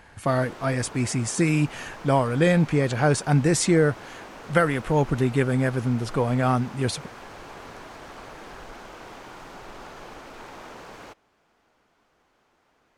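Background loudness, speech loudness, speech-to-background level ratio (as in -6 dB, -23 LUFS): -42.5 LUFS, -23.0 LUFS, 19.5 dB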